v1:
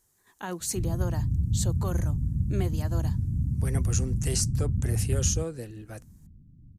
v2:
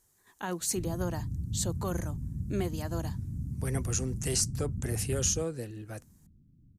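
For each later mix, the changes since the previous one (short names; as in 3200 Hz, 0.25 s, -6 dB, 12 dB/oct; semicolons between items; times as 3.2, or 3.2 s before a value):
background: add low shelf 220 Hz -10.5 dB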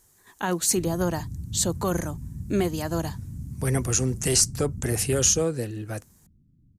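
speech +8.5 dB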